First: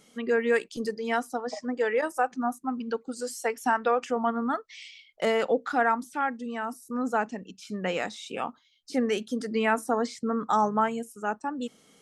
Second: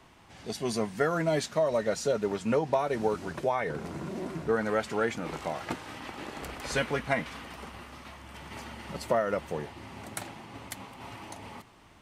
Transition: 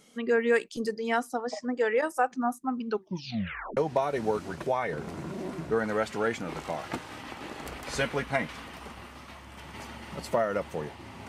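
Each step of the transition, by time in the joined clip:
first
2.88 s: tape stop 0.89 s
3.77 s: go over to second from 2.54 s

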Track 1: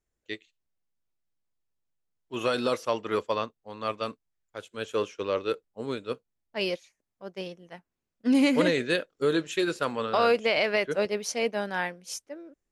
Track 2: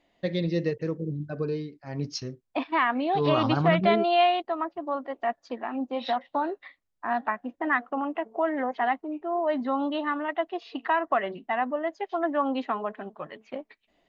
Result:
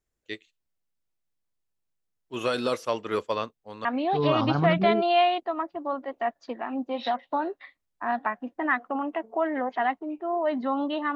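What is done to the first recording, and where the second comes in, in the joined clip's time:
track 1
3.85 s: go over to track 2 from 2.87 s

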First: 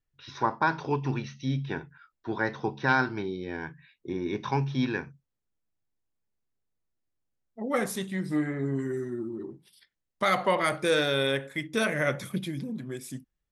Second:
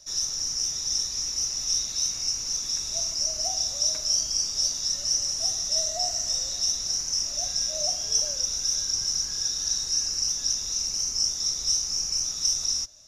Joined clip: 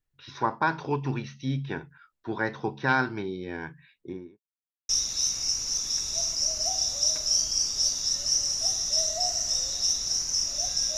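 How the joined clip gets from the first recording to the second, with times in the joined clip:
first
3.93–4.40 s: studio fade out
4.40–4.89 s: mute
4.89 s: go over to second from 1.68 s

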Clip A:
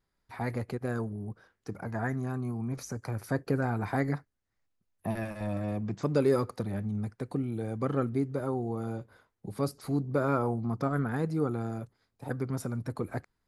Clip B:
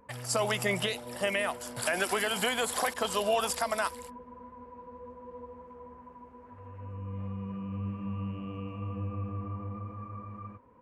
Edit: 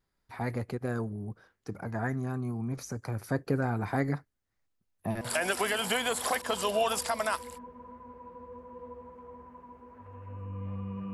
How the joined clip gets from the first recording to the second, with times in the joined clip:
clip A
5.21 s: go over to clip B from 1.73 s

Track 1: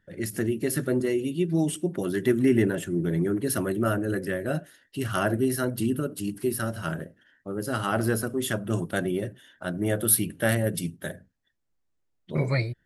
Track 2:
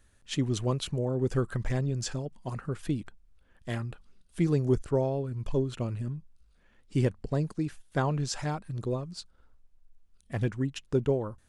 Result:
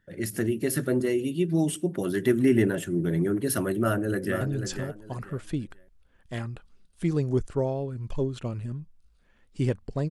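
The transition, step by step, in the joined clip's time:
track 1
3.74–4.41 s: echo throw 490 ms, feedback 25%, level -8 dB
4.41 s: go over to track 2 from 1.77 s

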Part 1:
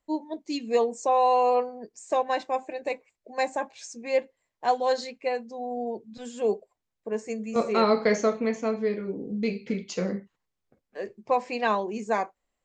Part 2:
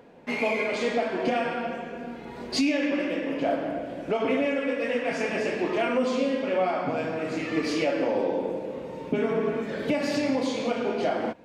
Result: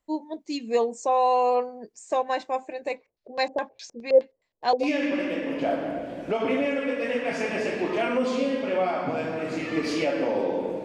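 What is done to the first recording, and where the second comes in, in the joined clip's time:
part 1
2.96–4.89 s: LFO low-pass square 4.8 Hz 500–4400 Hz
4.84 s: go over to part 2 from 2.64 s, crossfade 0.10 s

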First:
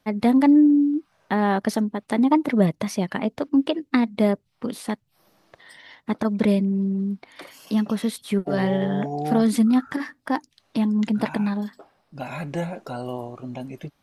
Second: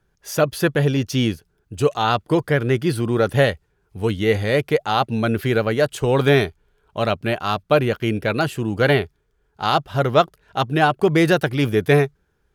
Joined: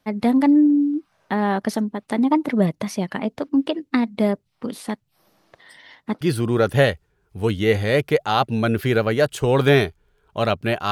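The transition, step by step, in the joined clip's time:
first
6.21 s: go over to second from 2.81 s

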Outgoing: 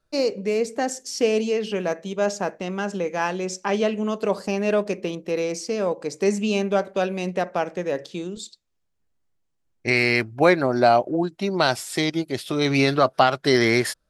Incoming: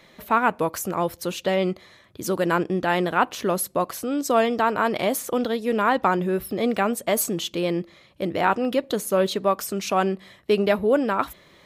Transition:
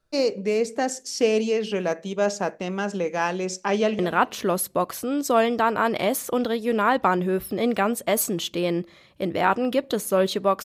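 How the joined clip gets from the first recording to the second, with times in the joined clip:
outgoing
3.72–3.99 s: echo throw 200 ms, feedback 30%, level -16 dB
3.99 s: go over to incoming from 2.99 s

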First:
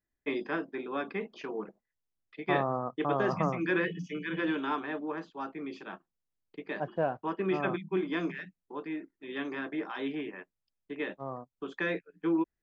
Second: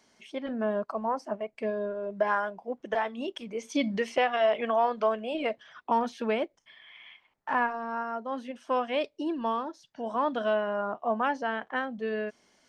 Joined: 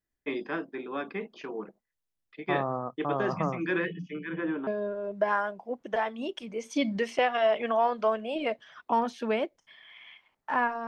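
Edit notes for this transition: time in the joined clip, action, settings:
first
3.78–4.67 s: low-pass 4.7 kHz -> 1.2 kHz
4.67 s: go over to second from 1.66 s

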